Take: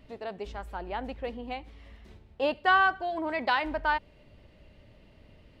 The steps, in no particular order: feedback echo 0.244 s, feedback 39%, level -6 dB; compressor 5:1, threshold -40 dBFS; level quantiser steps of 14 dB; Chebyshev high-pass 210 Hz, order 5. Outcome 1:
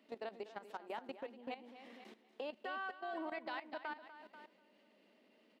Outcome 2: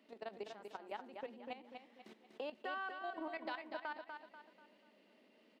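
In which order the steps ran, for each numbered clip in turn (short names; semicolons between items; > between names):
Chebyshev high-pass > compressor > feedback echo > level quantiser; compressor > Chebyshev high-pass > level quantiser > feedback echo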